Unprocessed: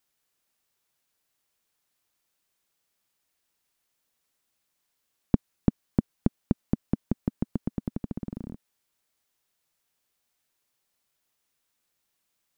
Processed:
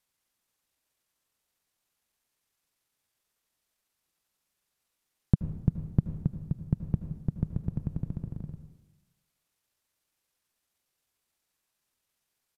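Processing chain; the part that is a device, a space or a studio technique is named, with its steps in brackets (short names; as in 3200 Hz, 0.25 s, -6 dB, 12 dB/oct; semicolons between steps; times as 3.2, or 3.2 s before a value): monster voice (pitch shift -6.5 st; low shelf 150 Hz +3.5 dB; reverb RT60 1.1 s, pre-delay 72 ms, DRR 8.5 dB); gain -3.5 dB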